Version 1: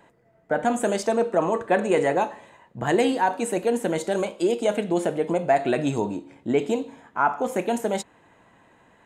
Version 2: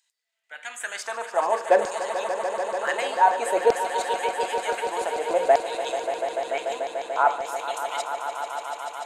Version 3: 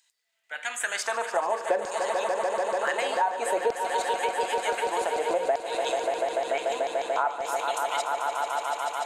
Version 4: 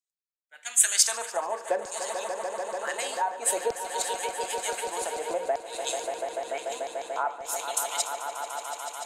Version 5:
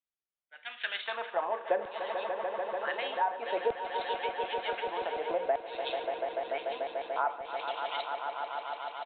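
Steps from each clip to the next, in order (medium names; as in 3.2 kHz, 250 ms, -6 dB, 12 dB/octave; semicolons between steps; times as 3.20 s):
LFO high-pass saw down 0.54 Hz 460–5300 Hz; echo with a slow build-up 146 ms, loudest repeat 5, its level -11.5 dB; trim -2.5 dB
compression 5:1, threshold -28 dBFS, peak gain reduction 14 dB; trim +4.5 dB
tone controls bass +2 dB, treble +13 dB; three bands expanded up and down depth 100%; trim -5 dB
resampled via 8 kHz; trim -1.5 dB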